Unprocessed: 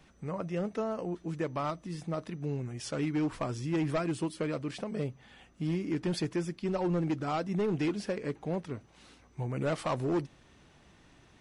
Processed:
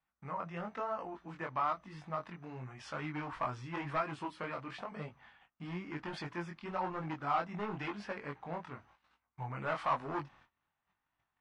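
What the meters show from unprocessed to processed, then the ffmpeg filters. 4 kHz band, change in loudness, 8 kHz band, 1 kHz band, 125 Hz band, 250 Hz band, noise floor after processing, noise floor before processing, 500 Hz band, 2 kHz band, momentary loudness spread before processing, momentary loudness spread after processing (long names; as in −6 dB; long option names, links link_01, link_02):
−7.0 dB, −6.0 dB, below −15 dB, +2.5 dB, −10.0 dB, −11.5 dB, below −85 dBFS, −61 dBFS, −8.5 dB, +0.5 dB, 7 LU, 12 LU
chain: -af "lowpass=frequency=2000:poles=1,aemphasis=mode=reproduction:type=50kf,agate=range=-24dB:threshold=-56dB:ratio=16:detection=peak,lowshelf=frequency=650:width_type=q:width=1.5:gain=-12.5,flanger=delay=19.5:depth=4.6:speed=0.99,volume=6dB"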